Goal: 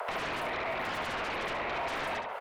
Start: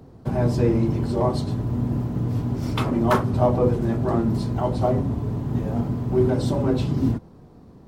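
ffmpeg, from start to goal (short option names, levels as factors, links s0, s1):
-filter_complex "[0:a]acrossover=split=590|730[s0][s1][s2];[s1]alimiter=level_in=2:limit=0.0631:level=0:latency=1:release=328,volume=0.501[s3];[s0][s3][s2]amix=inputs=3:normalize=0,acrossover=split=450[s4][s5];[s4]aeval=exprs='val(0)*(1-0.5/2+0.5/2*cos(2*PI*1.1*n/s))':c=same[s6];[s5]aeval=exprs='val(0)*(1-0.5/2-0.5/2*cos(2*PI*1.1*n/s))':c=same[s7];[s6][s7]amix=inputs=2:normalize=0,flanger=delay=9.6:depth=3.1:regen=-79:speed=0.44:shape=sinusoidal,atempo=1.4,afreqshift=160,aeval=exprs='0.211*sin(PI/2*10*val(0)/0.211)':c=same,acrossover=split=150|400|1200[s8][s9][s10][s11];[s8]acompressor=threshold=0.00316:ratio=4[s12];[s9]acompressor=threshold=0.00794:ratio=4[s13];[s10]acompressor=threshold=0.0112:ratio=4[s14];[s11]acompressor=threshold=0.001:ratio=4[s15];[s12][s13][s14][s15]amix=inputs=4:normalize=0,asplit=2[s16][s17];[s17]adelay=162,lowpass=f=2600:p=1,volume=0.562,asplit=2[s18][s19];[s19]adelay=162,lowpass=f=2600:p=1,volume=0.34,asplit=2[s20][s21];[s21]adelay=162,lowpass=f=2600:p=1,volume=0.34,asplit=2[s22][s23];[s23]adelay=162,lowpass=f=2600:p=1,volume=0.34[s24];[s16][s18][s20][s22][s24]amix=inputs=5:normalize=0,asetrate=103194,aresample=44100,volume=0.841"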